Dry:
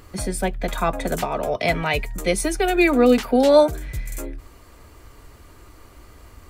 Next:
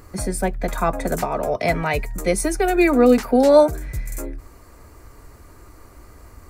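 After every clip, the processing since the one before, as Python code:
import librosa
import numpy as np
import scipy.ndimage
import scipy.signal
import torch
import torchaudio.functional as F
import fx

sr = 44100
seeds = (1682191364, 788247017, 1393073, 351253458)

y = fx.peak_eq(x, sr, hz=3200.0, db=-10.5, octaves=0.67)
y = y * 10.0 ** (1.5 / 20.0)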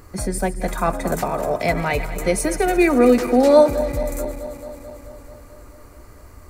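y = fx.reverse_delay_fb(x, sr, ms=109, feedback_pct=83, wet_db=-14)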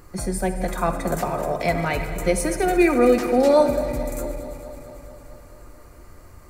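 y = fx.room_shoebox(x, sr, seeds[0], volume_m3=2600.0, walls='mixed', distance_m=0.87)
y = y * 10.0 ** (-3.0 / 20.0)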